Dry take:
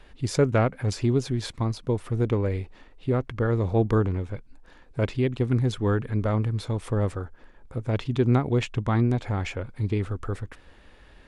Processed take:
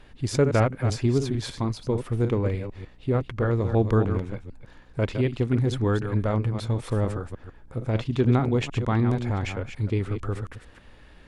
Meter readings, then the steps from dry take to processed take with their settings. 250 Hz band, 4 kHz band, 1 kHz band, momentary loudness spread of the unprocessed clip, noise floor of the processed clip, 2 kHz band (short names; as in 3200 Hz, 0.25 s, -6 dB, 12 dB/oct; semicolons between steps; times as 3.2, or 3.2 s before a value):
+0.5 dB, +0.5 dB, +0.5 dB, 12 LU, -51 dBFS, +0.5 dB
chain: reverse delay 0.15 s, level -8 dB; hum 60 Hz, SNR 32 dB